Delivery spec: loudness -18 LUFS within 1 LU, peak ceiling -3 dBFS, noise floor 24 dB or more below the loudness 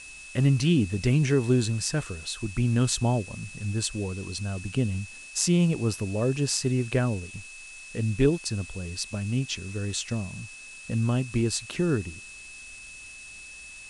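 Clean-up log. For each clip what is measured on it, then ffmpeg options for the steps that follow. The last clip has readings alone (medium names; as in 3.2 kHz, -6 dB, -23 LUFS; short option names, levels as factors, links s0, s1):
steady tone 2.6 kHz; tone level -43 dBFS; noise floor -44 dBFS; noise floor target -51 dBFS; loudness -27.0 LUFS; peak level -7.5 dBFS; loudness target -18.0 LUFS
-> -af "bandreject=f=2600:w=30"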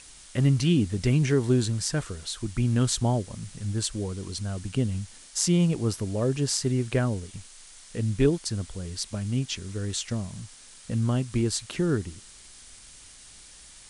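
steady tone not found; noise floor -49 dBFS; noise floor target -51 dBFS
-> -af "afftdn=nr=6:nf=-49"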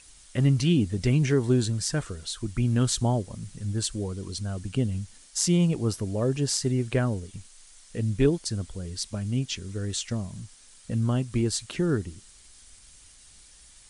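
noise floor -53 dBFS; loudness -27.0 LUFS; peak level -7.5 dBFS; loudness target -18.0 LUFS
-> -af "volume=2.82,alimiter=limit=0.708:level=0:latency=1"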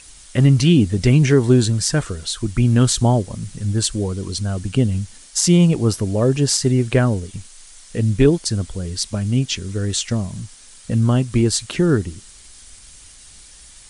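loudness -18.0 LUFS; peak level -3.0 dBFS; noise floor -44 dBFS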